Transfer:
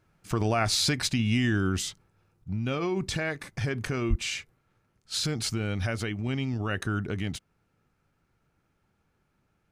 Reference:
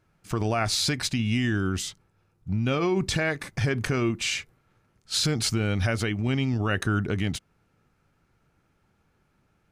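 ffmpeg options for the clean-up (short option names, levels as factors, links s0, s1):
-filter_complex "[0:a]asplit=3[s0][s1][s2];[s0]afade=t=out:st=4.09:d=0.02[s3];[s1]highpass=f=140:w=0.5412,highpass=f=140:w=1.3066,afade=t=in:st=4.09:d=0.02,afade=t=out:st=4.21:d=0.02[s4];[s2]afade=t=in:st=4.21:d=0.02[s5];[s3][s4][s5]amix=inputs=3:normalize=0,asetnsamples=n=441:p=0,asendcmd='2.44 volume volume 4.5dB',volume=1"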